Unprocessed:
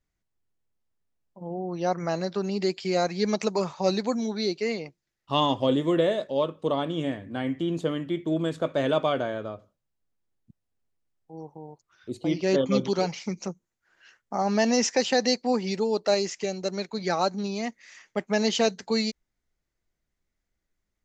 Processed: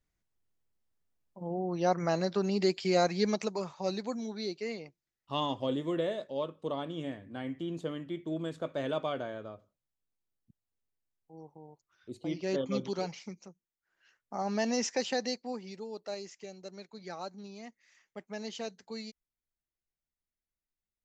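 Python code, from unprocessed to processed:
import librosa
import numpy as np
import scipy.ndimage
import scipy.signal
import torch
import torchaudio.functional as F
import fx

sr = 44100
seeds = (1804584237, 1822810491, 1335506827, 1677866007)

y = fx.gain(x, sr, db=fx.line((3.15, -1.5), (3.57, -9.0), (13.2, -9.0), (13.5, -19.0), (14.4, -8.0), (15.09, -8.0), (15.7, -16.0)))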